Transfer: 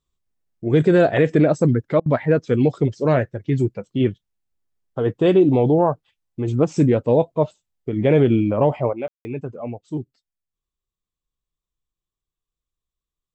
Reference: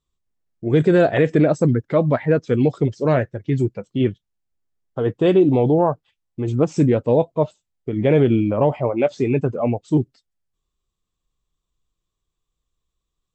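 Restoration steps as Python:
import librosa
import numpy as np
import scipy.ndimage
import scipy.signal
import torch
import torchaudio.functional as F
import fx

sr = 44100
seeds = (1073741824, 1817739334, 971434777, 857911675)

y = fx.fix_ambience(x, sr, seeds[0], print_start_s=10.25, print_end_s=10.75, start_s=9.08, end_s=9.25)
y = fx.fix_interpolate(y, sr, at_s=(2.0,), length_ms=58.0)
y = fx.fix_level(y, sr, at_s=8.93, step_db=9.5)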